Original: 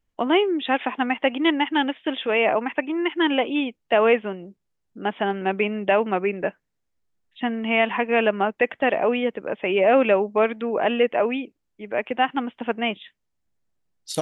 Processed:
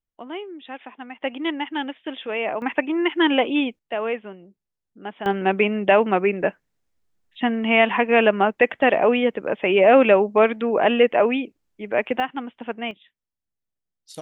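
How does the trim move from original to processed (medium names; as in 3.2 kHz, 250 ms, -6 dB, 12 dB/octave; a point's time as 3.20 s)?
-14 dB
from 1.21 s -5.5 dB
from 2.62 s +2.5 dB
from 3.79 s -8 dB
from 5.26 s +3.5 dB
from 12.20 s -4.5 dB
from 12.91 s -11.5 dB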